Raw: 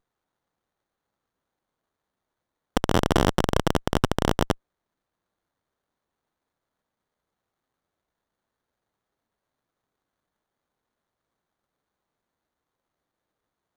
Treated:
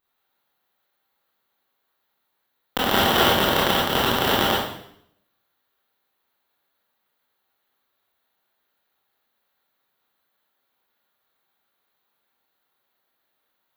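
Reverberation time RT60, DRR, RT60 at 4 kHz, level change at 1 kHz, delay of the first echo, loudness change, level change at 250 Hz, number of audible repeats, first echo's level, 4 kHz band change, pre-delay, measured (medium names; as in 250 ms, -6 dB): 0.70 s, -7.0 dB, 0.70 s, +6.0 dB, no echo, +5.0 dB, -0.5 dB, no echo, no echo, +11.5 dB, 20 ms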